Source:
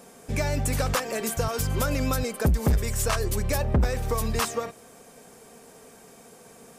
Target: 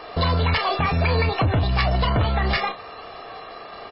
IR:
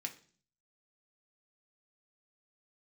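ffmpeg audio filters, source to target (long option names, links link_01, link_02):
-filter_complex "[0:a]lowpass=frequency=3500:poles=1,aecho=1:1:3:0.61,aecho=1:1:45|59:0.133|0.335,asoftclip=type=tanh:threshold=-22.5dB,asplit=2[link_01][link_02];[1:a]atrim=start_sample=2205,asetrate=61740,aresample=44100[link_03];[link_02][link_03]afir=irnorm=-1:irlink=0,volume=-4dB[link_04];[link_01][link_04]amix=inputs=2:normalize=0,asetrate=76440,aresample=44100,asplit=2[link_05][link_06];[link_06]acompressor=threshold=-35dB:ratio=10,volume=2dB[link_07];[link_05][link_07]amix=inputs=2:normalize=0,volume=4dB" -ar 12000 -c:a libmp3lame -b:a 16k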